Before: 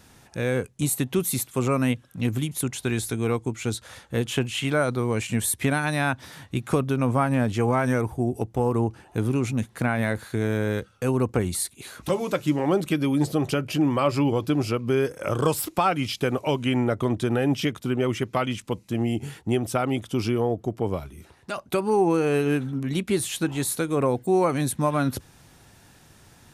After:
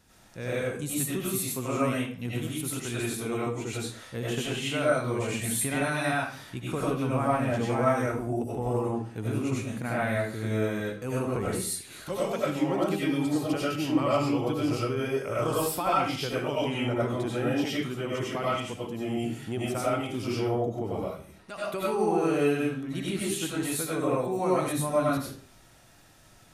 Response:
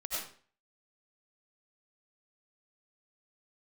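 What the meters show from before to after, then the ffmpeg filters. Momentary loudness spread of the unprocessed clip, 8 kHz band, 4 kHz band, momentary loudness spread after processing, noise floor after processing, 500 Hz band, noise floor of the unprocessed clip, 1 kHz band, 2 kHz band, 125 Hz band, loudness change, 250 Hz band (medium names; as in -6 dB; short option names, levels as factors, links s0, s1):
6 LU, -3.0 dB, -2.5 dB, 7 LU, -55 dBFS, -3.0 dB, -55 dBFS, -2.5 dB, -3.0 dB, -6.0 dB, -4.0 dB, -4.5 dB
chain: -filter_complex "[1:a]atrim=start_sample=2205[s0];[0:a][s0]afir=irnorm=-1:irlink=0,volume=0.531"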